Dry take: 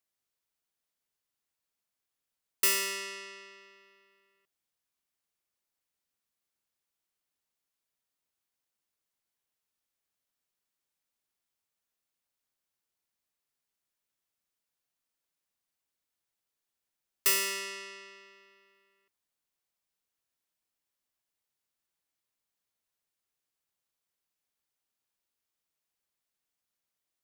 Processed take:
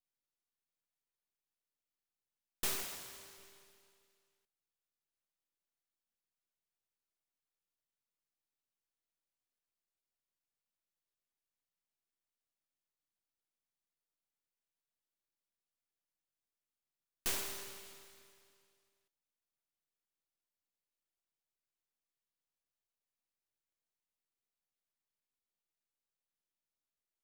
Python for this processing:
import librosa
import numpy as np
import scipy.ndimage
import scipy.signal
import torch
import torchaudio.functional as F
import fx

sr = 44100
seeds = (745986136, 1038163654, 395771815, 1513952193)

y = np.where(x < 0.0, 10.0 ** (-12.0 / 20.0) * x, x)
y = fx.highpass(y, sr, hz=fx.line((2.82, 890.0), (3.37, 350.0)), slope=12, at=(2.82, 3.37), fade=0.02)
y = fx.noise_mod_delay(y, sr, seeds[0], noise_hz=2700.0, depth_ms=0.22)
y = y * librosa.db_to_amplitude(-5.5)